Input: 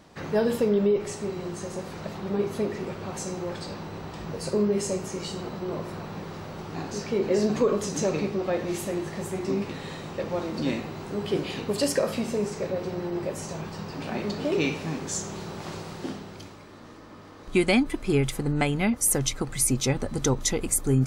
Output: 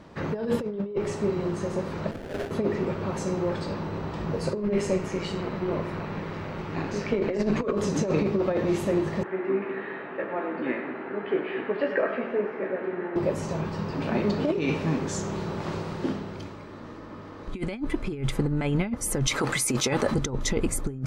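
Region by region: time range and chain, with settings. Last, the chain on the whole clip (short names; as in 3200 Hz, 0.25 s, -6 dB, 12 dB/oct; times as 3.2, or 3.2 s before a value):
2.11–2.51 elliptic band-pass 540–8700 Hz + sample-rate reducer 1100 Hz, jitter 20%
4.62–7.71 AM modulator 190 Hz, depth 30% + bell 2200 Hz +6.5 dB 1 oct
9.23–13.16 speaker cabinet 420–2300 Hz, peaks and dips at 540 Hz -7 dB, 1000 Hz -7 dB, 1700 Hz +5 dB + doubler 16 ms -6 dB + split-band echo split 440 Hz, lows 0.206 s, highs 98 ms, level -9 dB
19.27–20.14 HPF 650 Hz 6 dB/oct + high shelf 7300 Hz +4.5 dB + fast leveller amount 50%
whole clip: LPF 1900 Hz 6 dB/oct; notch 750 Hz, Q 12; negative-ratio compressor -27 dBFS, ratio -0.5; gain +3.5 dB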